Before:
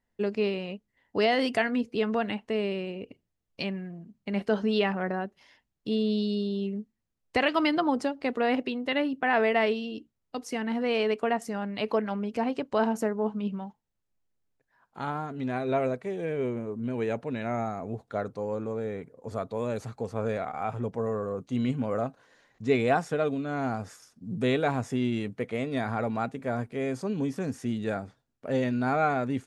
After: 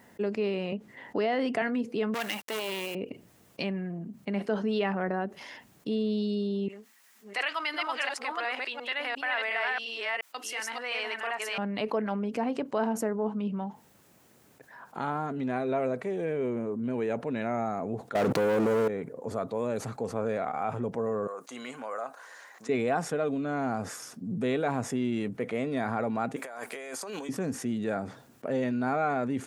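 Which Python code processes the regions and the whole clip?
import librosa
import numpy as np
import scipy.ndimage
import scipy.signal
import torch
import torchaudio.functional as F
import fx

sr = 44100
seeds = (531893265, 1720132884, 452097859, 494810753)

y = fx.chain(x, sr, fx.lowpass(hz=2800.0, slope=6),
    fx.band_squash(depth_pct=40), at=(0.72, 1.62))
y = fx.chain(y, sr, fx.tilt_eq(slope=4.5),
    fx.quant_companded(bits=4),
    fx.transformer_sat(knee_hz=2100.0), at=(2.14, 2.95))
y = fx.chain(y, sr, fx.reverse_delay(ms=353, wet_db=-0.5),
    fx.highpass(hz=1300.0, slope=12), at=(6.68, 11.58))
y = fx.chain(y, sr, fx.leveller(passes=5),
    fx.env_flatten(amount_pct=100), at=(18.15, 18.88))
y = fx.chain(y, sr, fx.highpass(hz=1100.0, slope=12),
    fx.peak_eq(hz=3000.0, db=-8.5, octaves=1.5), at=(21.27, 22.69))
y = fx.chain(y, sr, fx.highpass(hz=750.0, slope=12),
    fx.high_shelf(hz=6500.0, db=11.0),
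    fx.over_compress(threshold_db=-48.0, ratio=-1.0), at=(26.36, 27.29))
y = scipy.signal.sosfilt(scipy.signal.butter(2, 150.0, 'highpass', fs=sr, output='sos'), y)
y = fx.peak_eq(y, sr, hz=4100.0, db=-4.5, octaves=1.7)
y = fx.env_flatten(y, sr, amount_pct=50)
y = y * 10.0 ** (-5.0 / 20.0)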